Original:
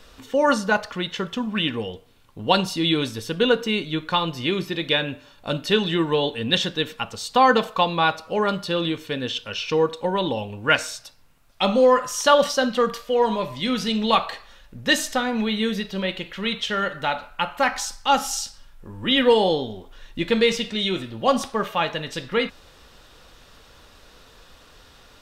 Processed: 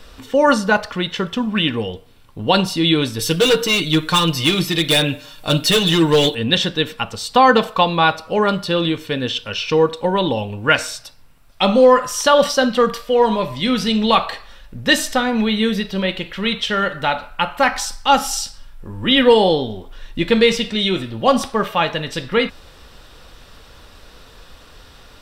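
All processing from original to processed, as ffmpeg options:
-filter_complex "[0:a]asettb=1/sr,asplit=3[a][b][c];[a]atrim=end=3.194[d];[b]atrim=start=3.19:end=6.35,asetpts=PTS-STARTPTS,afade=t=in:d=0.004:c=qsin,afade=t=out:st=3.156:d=0.004:c=qsin,highshelf=f=3.4k:g=12,asoftclip=type=hard:threshold=-17.5dB,aecho=1:1:6.5:0.65,atrim=end_sample=139356[e];[c]atrim=start=6.346[f];[d][e]acrossfade=d=0.004:c1=hsin:c2=qsin[g];[g][f]acrossfade=d=0.004:c1=qsin:c2=hsin,lowshelf=f=120:g=4.5,bandreject=f=6.6k:w=13,alimiter=level_in=6dB:limit=-1dB:release=50:level=0:latency=1,volume=-1dB"

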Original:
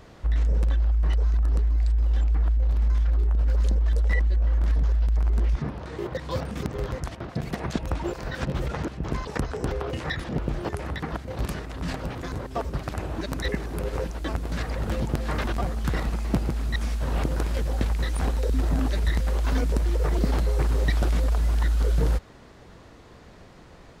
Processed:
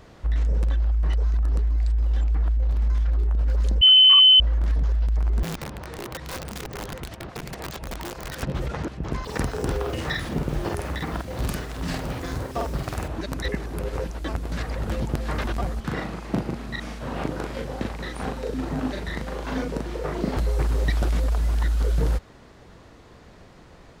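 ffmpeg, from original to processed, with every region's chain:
-filter_complex "[0:a]asettb=1/sr,asplit=3[a][b][c];[a]atrim=end=3.814[d];[b]atrim=start=3.81:end=4.4,asetpts=PTS-STARTPTS,afade=t=in:d=0.004:c=qsin,afade=t=out:st=0.586:d=0.004:c=qsin,lowshelf=f=400:g=8,lowpass=f=2.6k:t=q:w=0.5098,lowpass=f=2.6k:t=q:w=0.6013,lowpass=f=2.6k:t=q:w=0.9,lowpass=f=2.6k:t=q:w=2.563,afreqshift=-3100[e];[c]atrim=start=4.396[f];[d][e]acrossfade=d=0.004:c1=hsin:c2=qsin[g];[g][f]acrossfade=d=0.004:c1=qsin:c2=hsin,asettb=1/sr,asplit=3[h][i][j];[h]atrim=end=5.434[k];[i]atrim=start=5.43:end=8.43,asetpts=PTS-STARTPTS,afade=t=in:d=0.004:c=qsin,afade=t=out:st=2.996:d=0.004:c=qsin,equalizer=f=270:t=o:w=0.23:g=-4,acompressor=threshold=-30dB:ratio=3:attack=3.2:release=140:knee=1:detection=peak,aeval=exprs='(mod(22.4*val(0)+1,2)-1)/22.4':c=same[l];[j]atrim=start=8.426[m];[k][l]acrossfade=d=0.004:c1=hsin:c2=qsin[n];[n][m]acrossfade=d=0.004:c1=qsin:c2=hsin,asettb=1/sr,asplit=3[o][p][q];[o]atrim=end=9.244[r];[p]atrim=start=9.24:end=13.08,asetpts=PTS-STARTPTS,afade=t=in:d=0.004:c=qsin,afade=t=out:st=3.836:d=0.004:c=qsin,highshelf=f=4.5k:g=5,acrusher=bits=7:mix=0:aa=0.5,asplit=2[s][t];[t]adelay=49,volume=-2.5dB[u];[s][u]amix=inputs=2:normalize=0,atrim=end_sample=169344[v];[q]atrim=start=13.076[w];[r][v]acrossfade=d=0.004:c1=hsin:c2=qsin[x];[x][w]acrossfade=d=0.004:c1=qsin:c2=hsin,asettb=1/sr,asplit=3[y][z][aa];[y]atrim=end=15.804[ab];[z]atrim=start=15.8:end=20.37,asetpts=PTS-STARTPTS,afade=t=in:d=0.004:c=qsin,afade=t=out:st=4.566:d=0.004:c=qsin,highpass=130,highshelf=f=5.7k:g=-10,asplit=2[ac][ad];[ad]adelay=39,volume=-2.5dB[ae];[ac][ae]amix=inputs=2:normalize=0,atrim=end_sample=201537[af];[aa]atrim=start=20.366[ag];[ab][af]acrossfade=d=0.004:c1=hsin:c2=qsin[ah];[ah][ag]acrossfade=d=0.004:c1=qsin:c2=hsin"

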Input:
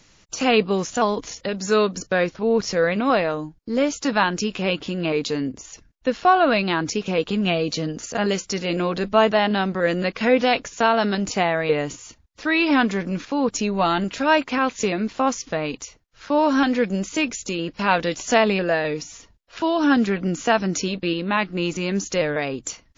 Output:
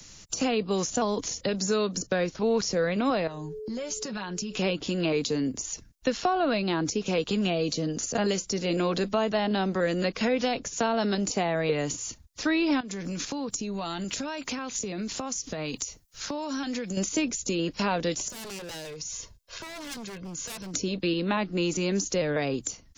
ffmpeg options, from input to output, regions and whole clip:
-filter_complex "[0:a]asettb=1/sr,asplit=3[a][b][c];[a]atrim=end=3.274[d];[b]atrim=start=3.27:end=4.57,asetpts=PTS-STARTPTS,afade=t=in:d=0.004:c=qsin,afade=t=out:st=1.296:d=0.004:c=qsin,aeval=exprs='val(0)+0.0178*sin(2*PI*430*n/s)':c=same,aecho=1:1:5.4:0.67,atrim=end_sample=57330,acompressor=threshold=-34dB:ratio=5:attack=3.2:release=140:knee=1:detection=peak[e];[c]atrim=start=4.566[f];[d][e]acrossfade=d=0.004:c1=hsin:c2=qsin[g];[g][f]acrossfade=d=0.004:c1=qsin:c2=hsin,asettb=1/sr,asplit=3[h][i][j];[h]atrim=end=12.804[k];[i]atrim=start=12.8:end=16.97,asetpts=PTS-STARTPTS,afade=t=in:d=0.004:c=qsin,afade=t=out:st=4.166:d=0.004:c=qsin,highshelf=f=6.2k:g=10.5,acompressor=threshold=-29dB:ratio=16:attack=3.2:release=140:knee=1:detection=peak[l];[j]atrim=start=16.966[m];[k][l]acrossfade=d=0.004:c1=hsin:c2=qsin[n];[n][m]acrossfade=d=0.004:c1=qsin:c2=hsin,asettb=1/sr,asplit=3[o][p][q];[o]atrim=end=18.284[r];[p]atrim=start=18.28:end=20.74,asetpts=PTS-STARTPTS,afade=t=in:d=0.004:c=qsin,afade=t=out:st=2.456:d=0.004:c=qsin,aecho=1:1:1.9:0.55,atrim=end_sample=108486,aeval=exprs='0.1*(abs(mod(val(0)/0.1+3,4)-2)-1)':c=same,acompressor=threshold=-41dB:ratio=5:attack=3.2:release=140:knee=1:detection=peak[s];[q]atrim=start=20.736[t];[r][s]acrossfade=d=0.004:c1=hsin:c2=qsin[u];[u][t]acrossfade=d=0.004:c1=qsin:c2=hsin,bass=f=250:g=5,treble=f=4k:g=12,alimiter=limit=-8.5dB:level=0:latency=1:release=395,acrossover=split=88|260|750[v][w][x][y];[v]acompressor=threshold=-52dB:ratio=4[z];[w]acompressor=threshold=-36dB:ratio=4[aa];[x]acompressor=threshold=-26dB:ratio=4[ab];[y]acompressor=threshold=-32dB:ratio=4[ac];[z][aa][ab][ac]amix=inputs=4:normalize=0"

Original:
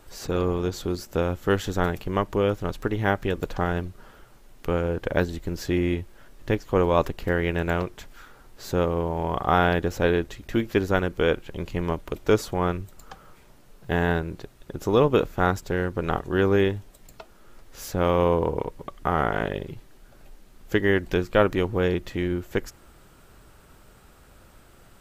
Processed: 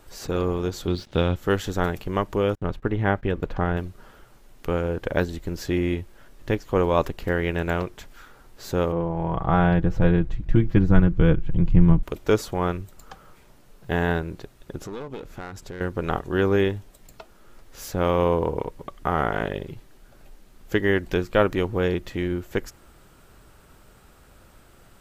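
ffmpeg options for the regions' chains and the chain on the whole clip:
-filter_complex "[0:a]asettb=1/sr,asplit=3[a][b][c];[a]atrim=end=0.874[d];[b]atrim=start=0.87:end=1.36,asetpts=PTS-STARTPTS,afade=t=in:d=0.004:c=qsin,afade=t=out:st=0.486:d=0.004:c=qsin,lowpass=f=3.6k:t=q:w=3.7,equalizer=f=120:t=o:w=2:g=6.5,aeval=exprs='sgn(val(0))*max(abs(val(0))-0.00299,0)':c=same[e];[c]atrim=start=1.356[f];[d][e]acrossfade=d=0.004:c1=hsin:c2=qsin[g];[g][f]acrossfade=d=0.004:c1=qsin:c2=hsin,asettb=1/sr,asplit=3[h][i][j];[h]atrim=end=2.554[k];[i]atrim=start=2.55:end=3.77,asetpts=PTS-STARTPTS,afade=t=in:d=0.004:c=qsin,afade=t=out:st=1.216:d=0.004:c=qsin,bass=f=250:g=3,treble=f=4k:g=-13,agate=range=-34dB:threshold=-36dB:ratio=16:release=100:detection=peak[l];[j]atrim=start=3.766[m];[k][l]acrossfade=d=0.004:c1=hsin:c2=qsin[n];[n][m]acrossfade=d=0.004:c1=qsin:c2=hsin,asettb=1/sr,asplit=3[o][p][q];[o]atrim=end=8.924[r];[p]atrim=start=8.92:end=12.03,asetpts=PTS-STARTPTS,afade=t=in:d=0.004:c=qsin,afade=t=out:st=3.106:d=0.004:c=qsin,lowpass=f=1.2k:p=1,asubboost=boost=11.5:cutoff=170,aecho=1:1:6.1:0.58,atrim=end_sample=137151[s];[q]atrim=start=12.026[t];[r][s]acrossfade=d=0.004:c1=hsin:c2=qsin[u];[u][t]acrossfade=d=0.004:c1=qsin:c2=hsin,asettb=1/sr,asplit=3[v][w][x];[v]atrim=end=14.784[y];[w]atrim=start=14.78:end=15.81,asetpts=PTS-STARTPTS,afade=t=in:d=0.004:c=qsin,afade=t=out:st=1.026:d=0.004:c=qsin,lowpass=12k,aeval=exprs='clip(val(0),-1,0.075)':c=same,acompressor=threshold=-35dB:ratio=3:attack=3.2:release=140:knee=1:detection=peak[z];[x]atrim=start=15.806[aa];[y][z]acrossfade=d=0.004:c1=hsin:c2=qsin[ab];[ab][aa]acrossfade=d=0.004:c1=qsin:c2=hsin"

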